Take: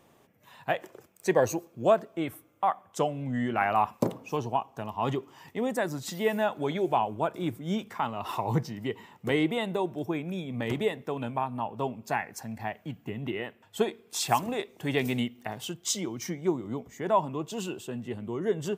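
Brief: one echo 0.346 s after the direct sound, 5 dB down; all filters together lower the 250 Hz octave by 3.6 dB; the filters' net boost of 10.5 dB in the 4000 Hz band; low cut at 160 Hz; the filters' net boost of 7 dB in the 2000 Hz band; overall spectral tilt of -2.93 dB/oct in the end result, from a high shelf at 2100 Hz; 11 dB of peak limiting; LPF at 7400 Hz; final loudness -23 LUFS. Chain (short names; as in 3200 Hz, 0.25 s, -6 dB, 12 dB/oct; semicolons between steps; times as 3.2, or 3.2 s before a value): HPF 160 Hz; LPF 7400 Hz; bell 250 Hz -4 dB; bell 2000 Hz +3.5 dB; high shelf 2100 Hz +5.5 dB; bell 4000 Hz +7.5 dB; limiter -17.5 dBFS; echo 0.346 s -5 dB; gain +7.5 dB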